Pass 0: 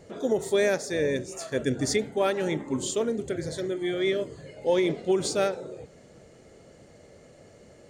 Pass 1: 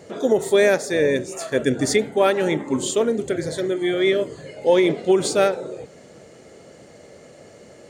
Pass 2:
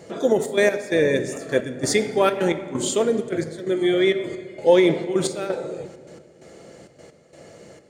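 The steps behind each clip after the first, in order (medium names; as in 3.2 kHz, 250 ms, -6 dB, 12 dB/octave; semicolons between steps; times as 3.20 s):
high-pass 180 Hz 6 dB/octave; dynamic bell 5.5 kHz, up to -5 dB, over -50 dBFS, Q 1.5; trim +8 dB
trance gate "xxxx.x.." 131 bpm -12 dB; simulated room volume 3600 m³, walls mixed, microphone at 0.76 m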